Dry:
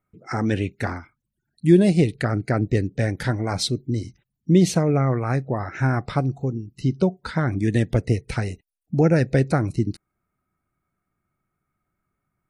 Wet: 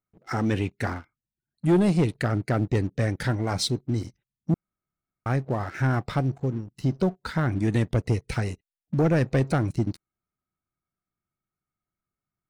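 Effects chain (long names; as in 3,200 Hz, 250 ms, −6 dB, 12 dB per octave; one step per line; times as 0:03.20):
0:00.93–0:01.65: high-shelf EQ 4,200 Hz −8.5 dB
0:04.54–0:05.26: fill with room tone
leveller curve on the samples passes 2
level −9 dB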